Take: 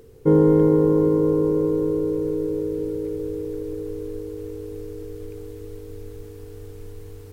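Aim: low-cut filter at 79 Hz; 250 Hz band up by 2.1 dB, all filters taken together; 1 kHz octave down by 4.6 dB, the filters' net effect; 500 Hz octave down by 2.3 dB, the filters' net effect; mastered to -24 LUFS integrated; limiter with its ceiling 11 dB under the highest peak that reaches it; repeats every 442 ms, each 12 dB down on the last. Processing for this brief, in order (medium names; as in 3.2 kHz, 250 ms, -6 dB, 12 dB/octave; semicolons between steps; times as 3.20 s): high-pass 79 Hz; peaking EQ 250 Hz +5.5 dB; peaking EQ 500 Hz -4 dB; peaking EQ 1 kHz -4.5 dB; peak limiter -17 dBFS; feedback delay 442 ms, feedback 25%, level -12 dB; trim +3.5 dB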